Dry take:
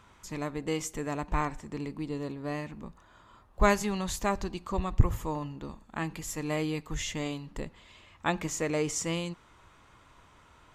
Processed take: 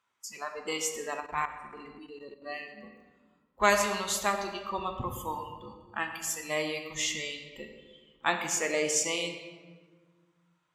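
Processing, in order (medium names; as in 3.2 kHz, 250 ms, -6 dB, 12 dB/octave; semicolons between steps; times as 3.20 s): in parallel at -11.5 dB: sine folder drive 6 dB, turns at -7 dBFS; on the sum: spectral noise reduction 23 dB; on a send at -4 dB: reverberation RT60 1.5 s, pre-delay 8 ms; 1.20–2.42 s: on the sum: level held to a coarse grid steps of 12 dB; high-pass 970 Hz 6 dB/octave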